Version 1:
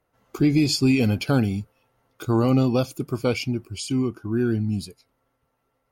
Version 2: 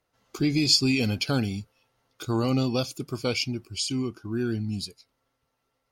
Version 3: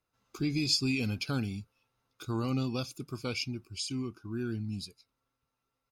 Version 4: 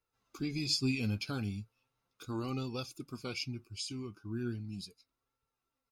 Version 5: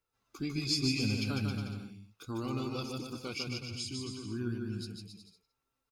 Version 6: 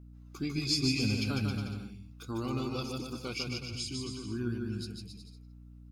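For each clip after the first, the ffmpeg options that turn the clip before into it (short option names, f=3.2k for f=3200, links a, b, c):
-af "equalizer=f=4.8k:t=o:w=1.8:g=11,volume=-5.5dB"
-af "aecho=1:1:0.8:0.34,volume=-8dB"
-af "flanger=delay=2.2:depth=7.8:regen=44:speed=0.37:shape=sinusoidal"
-af "aecho=1:1:150|270|366|442.8|504.2:0.631|0.398|0.251|0.158|0.1"
-af "aeval=exprs='val(0)+0.00282*(sin(2*PI*60*n/s)+sin(2*PI*2*60*n/s)/2+sin(2*PI*3*60*n/s)/3+sin(2*PI*4*60*n/s)/4+sin(2*PI*5*60*n/s)/5)':c=same,volume=1.5dB"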